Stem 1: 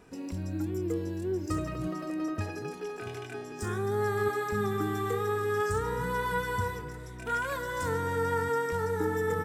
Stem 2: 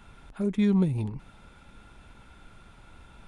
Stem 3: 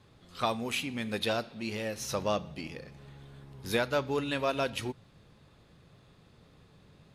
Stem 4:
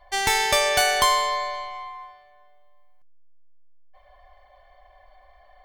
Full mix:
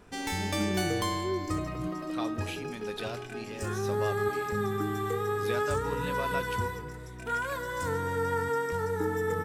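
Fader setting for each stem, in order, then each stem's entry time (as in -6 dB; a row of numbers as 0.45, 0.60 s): -0.5, -11.5, -7.5, -13.5 dB; 0.00, 0.00, 1.75, 0.00 s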